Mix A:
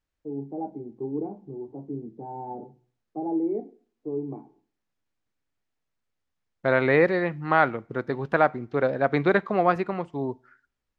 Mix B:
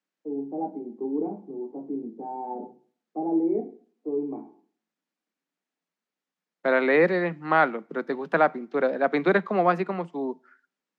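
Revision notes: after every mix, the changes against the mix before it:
first voice: send +8.0 dB; master: add steep high-pass 160 Hz 96 dB/octave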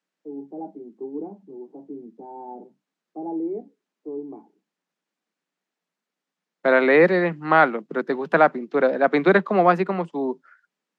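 second voice +5.0 dB; reverb: off

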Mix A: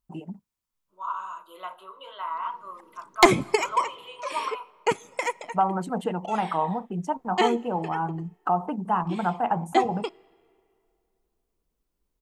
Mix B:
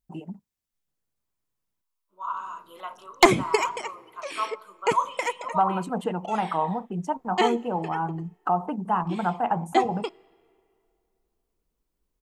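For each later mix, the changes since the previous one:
second voice: entry +1.20 s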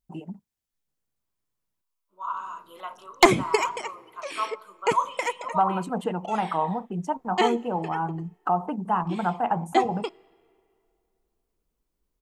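no change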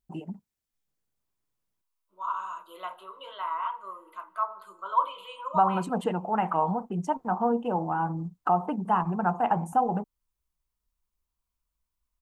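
background: muted

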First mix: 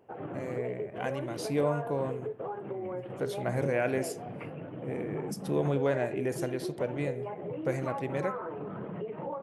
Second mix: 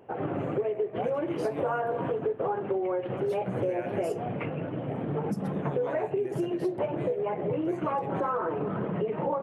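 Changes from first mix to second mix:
speech -10.5 dB; background +8.0 dB

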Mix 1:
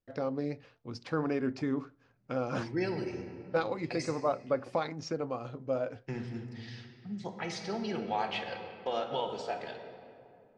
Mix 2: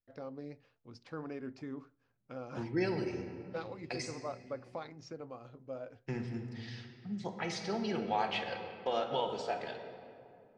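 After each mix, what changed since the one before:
first voice -11.0 dB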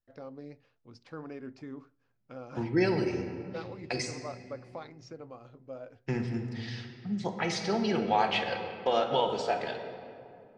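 second voice +6.5 dB

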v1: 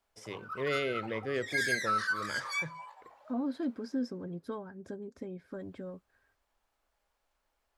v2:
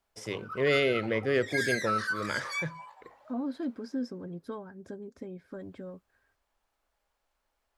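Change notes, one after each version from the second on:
first voice +7.0 dB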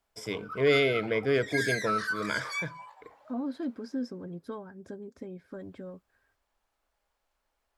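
first voice: add rippled EQ curve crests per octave 1.7, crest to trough 9 dB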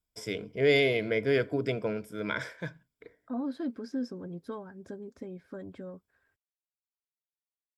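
background: muted

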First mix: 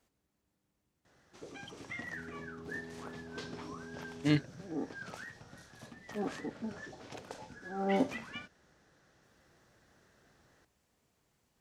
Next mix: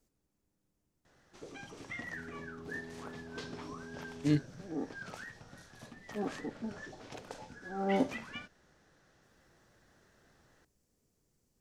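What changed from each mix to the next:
speech: add high-order bell 1.6 kHz -9.5 dB 2.9 oct; master: remove high-pass 42 Hz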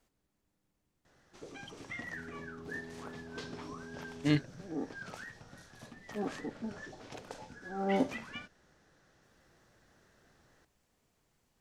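speech: add high-order bell 1.6 kHz +9.5 dB 2.9 oct

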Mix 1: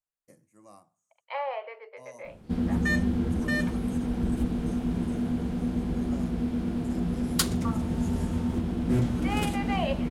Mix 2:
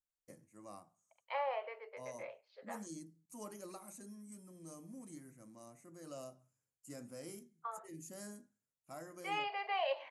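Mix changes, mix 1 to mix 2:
second voice -5.0 dB; background: muted

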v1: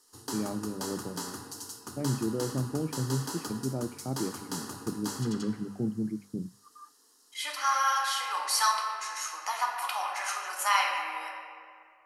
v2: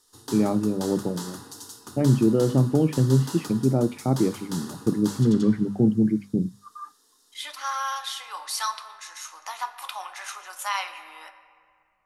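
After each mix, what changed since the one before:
first voice +11.5 dB; second voice: send -11.5 dB; master: remove band-stop 3.6 kHz, Q 5.8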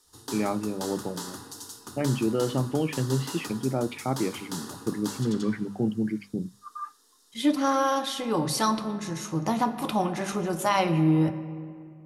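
first voice: add tilt shelf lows -8.5 dB, about 820 Hz; second voice: remove high-pass 1 kHz 24 dB/octave

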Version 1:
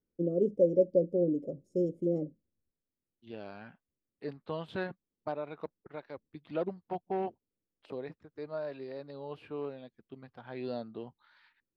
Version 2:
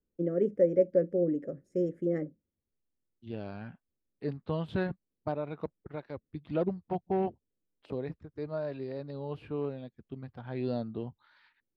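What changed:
first voice: remove Butterworth band-stop 1.7 kHz, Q 0.59; second voice: remove high-pass 460 Hz 6 dB/octave

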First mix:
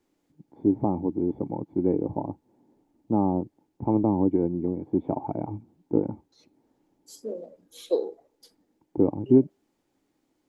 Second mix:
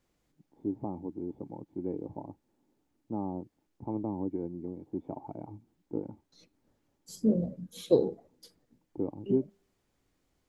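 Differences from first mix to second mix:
first voice -11.5 dB; second voice: remove high-pass 370 Hz 24 dB/octave

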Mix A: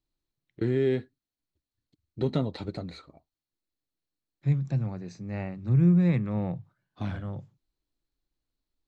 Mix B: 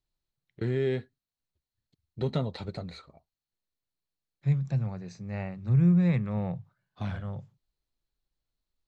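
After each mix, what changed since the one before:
master: add peaking EQ 300 Hz -9.5 dB 0.53 oct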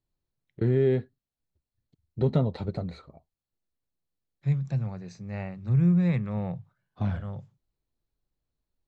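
first voice: add tilt shelf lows +6 dB, about 1.3 kHz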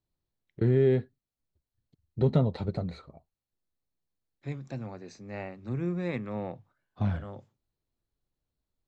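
second voice: add resonant low shelf 210 Hz -7.5 dB, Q 3

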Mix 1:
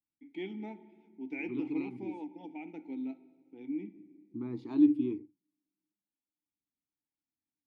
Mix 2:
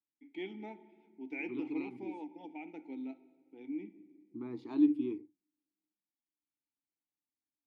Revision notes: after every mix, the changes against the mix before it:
master: add tone controls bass -9 dB, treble -1 dB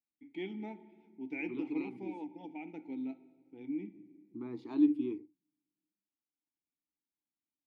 first voice: remove high-pass 260 Hz 12 dB/octave

